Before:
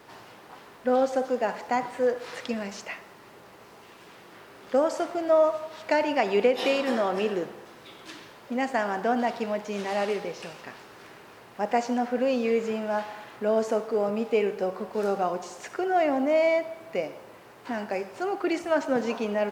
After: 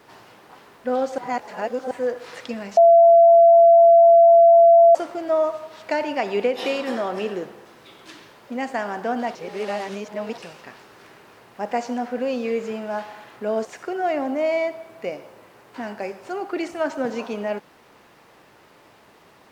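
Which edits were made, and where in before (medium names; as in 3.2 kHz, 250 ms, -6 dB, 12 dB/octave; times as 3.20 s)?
1.18–1.91 s: reverse
2.77–4.95 s: bleep 676 Hz -8 dBFS
9.35–10.38 s: reverse
13.65–15.56 s: delete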